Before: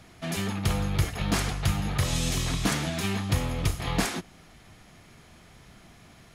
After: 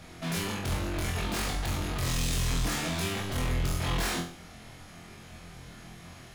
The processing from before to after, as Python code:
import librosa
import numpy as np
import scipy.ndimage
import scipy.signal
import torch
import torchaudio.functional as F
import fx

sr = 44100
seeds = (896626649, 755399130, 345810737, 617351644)

y = np.clip(10.0 ** (33.5 / 20.0) * x, -1.0, 1.0) / 10.0 ** (33.5 / 20.0)
y = fx.room_flutter(y, sr, wall_m=4.0, rt60_s=0.42)
y = y * librosa.db_to_amplitude(2.0)